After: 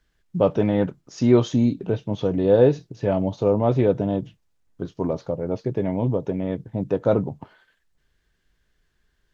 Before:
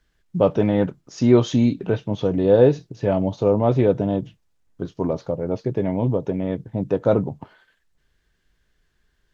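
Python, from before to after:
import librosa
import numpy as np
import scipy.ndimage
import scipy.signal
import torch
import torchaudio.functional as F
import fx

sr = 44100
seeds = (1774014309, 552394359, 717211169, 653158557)

y = fx.peak_eq(x, sr, hz=fx.line((1.47, 3400.0), (2.07, 1300.0)), db=-6.0, octaves=1.8, at=(1.47, 2.07), fade=0.02)
y = y * librosa.db_to_amplitude(-1.5)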